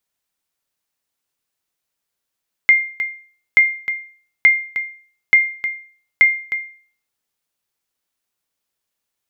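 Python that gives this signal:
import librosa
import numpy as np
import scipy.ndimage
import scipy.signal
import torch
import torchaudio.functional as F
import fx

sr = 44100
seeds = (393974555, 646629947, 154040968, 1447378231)

y = fx.sonar_ping(sr, hz=2110.0, decay_s=0.45, every_s=0.88, pings=5, echo_s=0.31, echo_db=-11.5, level_db=-3.5)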